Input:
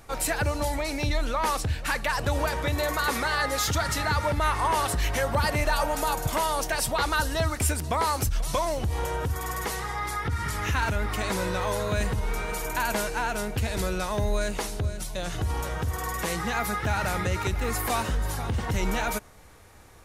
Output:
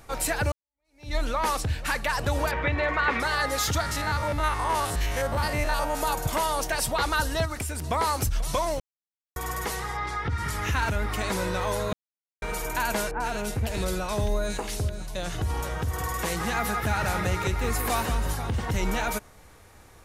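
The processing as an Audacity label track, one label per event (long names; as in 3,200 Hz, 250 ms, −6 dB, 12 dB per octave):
0.520000	1.150000	fade in exponential
2.510000	3.200000	low-pass with resonance 2,300 Hz, resonance Q 2
3.810000	6.010000	spectrum averaged block by block every 50 ms
7.450000	7.860000	downward compressor 10 to 1, threshold −27 dBFS
8.800000	9.360000	silence
9.970000	10.380000	low-pass filter 5,300 Hz
11.930000	12.420000	silence
13.110000	15.080000	multiband delay without the direct sound lows, highs 90 ms, split 1,700 Hz
15.780000	18.330000	single-tap delay 176 ms −8 dB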